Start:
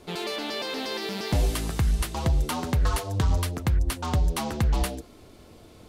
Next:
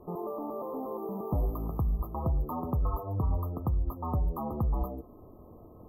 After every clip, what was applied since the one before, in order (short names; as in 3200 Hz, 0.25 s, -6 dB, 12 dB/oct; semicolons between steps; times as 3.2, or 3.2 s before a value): FFT band-reject 1300–12000 Hz; high shelf 11000 Hz -3.5 dB; in parallel at +2 dB: compressor, threshold -33 dBFS, peak gain reduction 13.5 dB; on the sum: gain -8 dB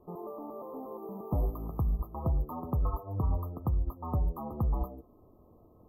upward expander 1.5:1, over -41 dBFS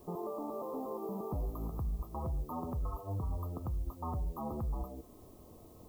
compressor 2:1, threshold -40 dBFS, peak gain reduction 8.5 dB; limiter -33.5 dBFS, peak gain reduction 8 dB; added noise blue -70 dBFS; gain +3.5 dB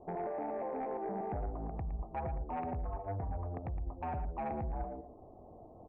ladder low-pass 840 Hz, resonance 65%; sine folder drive 4 dB, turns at -34 dBFS; on a send: echo 0.113 s -10.5 dB; on the sum: gain +1.5 dB